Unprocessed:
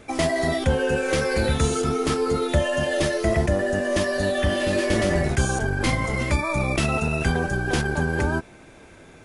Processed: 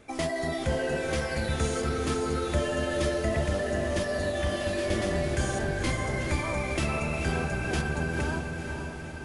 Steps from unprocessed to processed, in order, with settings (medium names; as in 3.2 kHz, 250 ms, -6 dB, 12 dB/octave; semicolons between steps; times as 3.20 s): echo that smears into a reverb 495 ms, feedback 60%, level -5.5 dB; trim -7.5 dB